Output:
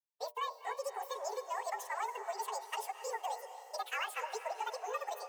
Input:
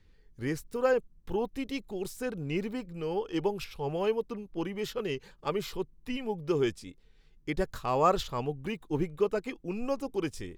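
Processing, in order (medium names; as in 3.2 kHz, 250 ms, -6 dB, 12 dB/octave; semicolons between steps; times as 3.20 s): frequency axis rescaled in octaves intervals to 110%; steep high-pass 210 Hz 96 dB/octave; expander -51 dBFS; compression, threshold -35 dBFS, peak gain reduction 11.5 dB; hum notches 60/120/180/240/300/360/420/480/540 Hz; on a send: echo that smears into a reverb 537 ms, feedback 51%, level -11.5 dB; on the sum: speed mistake 7.5 ips tape played at 15 ips; trim +1 dB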